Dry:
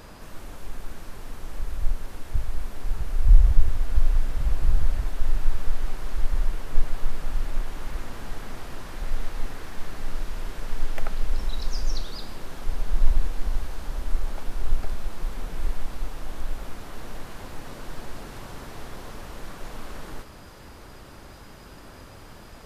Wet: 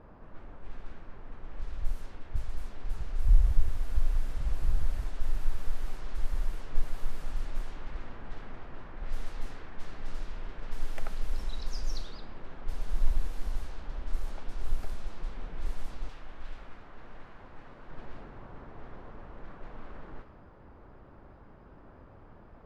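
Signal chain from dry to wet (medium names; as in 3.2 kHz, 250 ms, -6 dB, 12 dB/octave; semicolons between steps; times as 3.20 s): 16.09–17.91 s: tilt shelf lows -5 dB, about 1.3 kHz; level-controlled noise filter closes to 1.1 kHz, open at -15 dBFS; trim -7 dB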